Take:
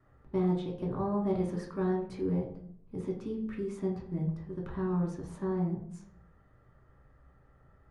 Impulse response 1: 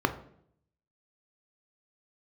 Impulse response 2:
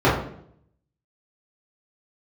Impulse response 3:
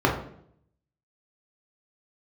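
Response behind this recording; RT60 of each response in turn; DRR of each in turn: 3; 0.65 s, 0.65 s, 0.65 s; 7.5 dB, -10.0 dB, -2.0 dB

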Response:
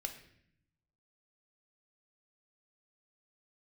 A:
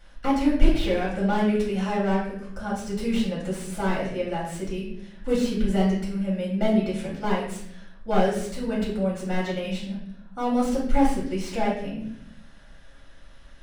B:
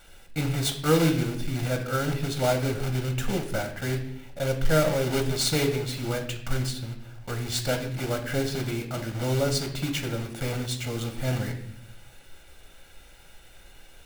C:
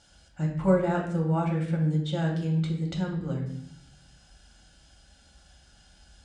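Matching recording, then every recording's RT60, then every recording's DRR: B; 0.65 s, 0.65 s, 0.65 s; -6.5 dB, 4.5 dB, -1.0 dB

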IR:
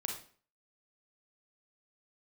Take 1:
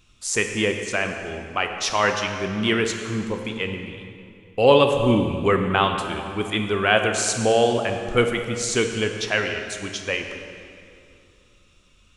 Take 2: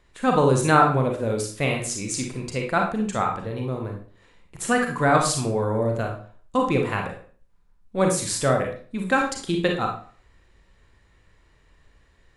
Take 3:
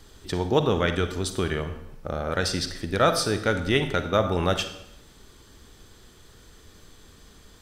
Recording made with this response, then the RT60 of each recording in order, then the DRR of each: 2; 2.5 s, 0.45 s, 0.80 s; 4.5 dB, 1.5 dB, 8.5 dB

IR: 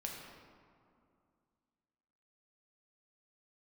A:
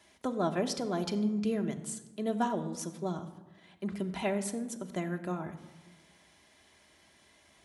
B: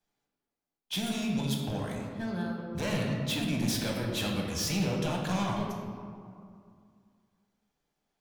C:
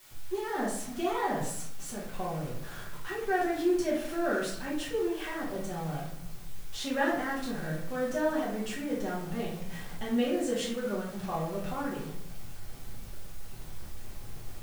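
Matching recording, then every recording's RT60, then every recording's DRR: B; 1.1 s, 2.4 s, 0.70 s; 4.0 dB, -1.0 dB, -7.0 dB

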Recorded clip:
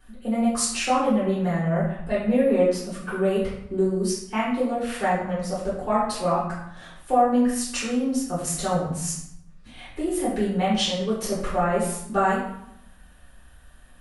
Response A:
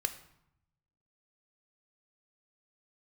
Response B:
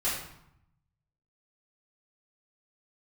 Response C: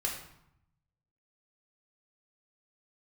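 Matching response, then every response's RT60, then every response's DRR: B; 0.75 s, 0.75 s, 0.75 s; 8.0 dB, -10.5 dB, -1.5 dB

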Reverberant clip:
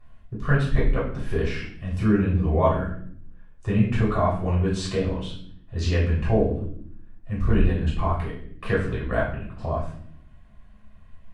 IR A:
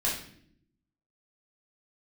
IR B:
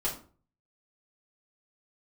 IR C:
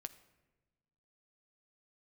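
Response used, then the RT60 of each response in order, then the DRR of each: A; 0.65 s, 0.40 s, 1.2 s; -7.0 dB, -4.5 dB, 10.5 dB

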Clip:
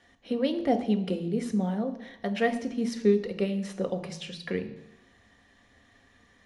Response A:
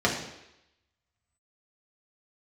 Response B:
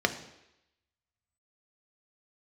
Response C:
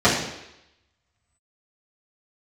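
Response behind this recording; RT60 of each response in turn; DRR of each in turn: B; 0.85 s, 0.85 s, 0.85 s; -3.0 dB, 6.5 dB, -11.0 dB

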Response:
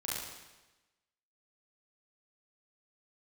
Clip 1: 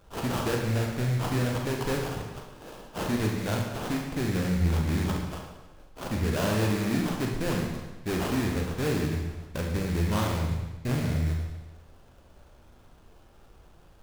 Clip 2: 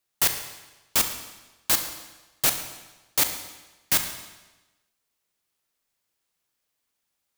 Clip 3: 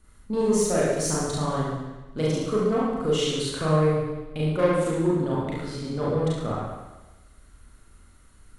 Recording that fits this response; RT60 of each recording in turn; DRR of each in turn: 3; 1.1 s, 1.1 s, 1.1 s; 0.5 dB, 6.5 dB, -7.0 dB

